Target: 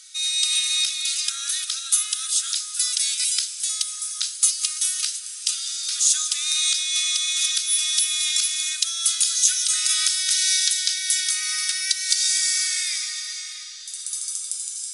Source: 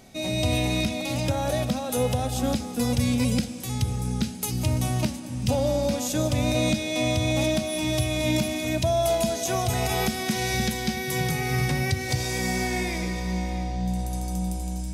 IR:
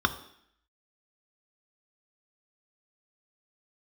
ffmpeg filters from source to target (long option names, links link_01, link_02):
-af "afftfilt=real='re*between(b*sr/4096,1200,11000)':imag='im*between(b*sr/4096,1200,11000)':win_size=4096:overlap=0.75,aexciter=amount=6.1:drive=1.1:freq=3300"